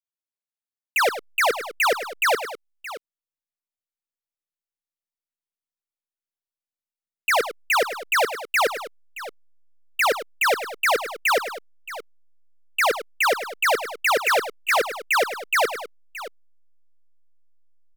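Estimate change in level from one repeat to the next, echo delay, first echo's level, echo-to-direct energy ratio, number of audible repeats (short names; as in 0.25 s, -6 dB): no steady repeat, 0.103 s, -12.0 dB, -10.0 dB, 2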